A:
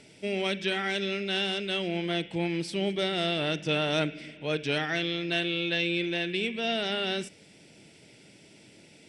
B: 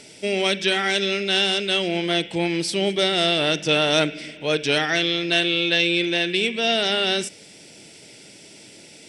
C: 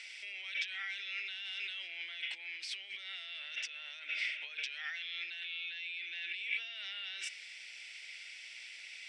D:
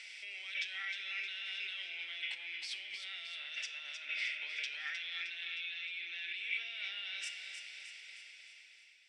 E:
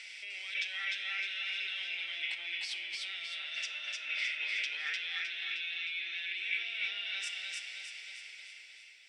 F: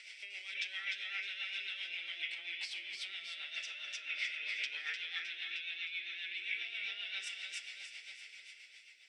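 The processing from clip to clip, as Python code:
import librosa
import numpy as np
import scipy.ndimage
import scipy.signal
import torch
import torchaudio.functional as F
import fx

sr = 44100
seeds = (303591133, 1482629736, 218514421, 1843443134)

y1 = fx.curve_eq(x, sr, hz=(150.0, 450.0, 2500.0, 5600.0), db=(0, 5, 5, 11))
y1 = y1 * 10.0 ** (3.0 / 20.0)
y2 = fx.over_compress(y1, sr, threshold_db=-31.0, ratio=-1.0)
y2 = fx.ladder_bandpass(y2, sr, hz=2500.0, resonance_pct=50)
y2 = y2 * 10.0 ** (1.0 / 20.0)
y3 = fx.fade_out_tail(y2, sr, length_s=1.66)
y3 = fx.echo_feedback(y3, sr, ms=310, feedback_pct=55, wet_db=-7.5)
y3 = fx.room_shoebox(y3, sr, seeds[0], volume_m3=420.0, walls='mixed', distance_m=0.41)
y3 = y3 * 10.0 ** (-1.5 / 20.0)
y4 = y3 + 10.0 ** (-3.0 / 20.0) * np.pad(y3, (int(301 * sr / 1000.0), 0))[:len(y3)]
y4 = y4 * 10.0 ** (2.5 / 20.0)
y5 = fx.rotary(y4, sr, hz=7.5)
y5 = y5 * 10.0 ** (-1.5 / 20.0)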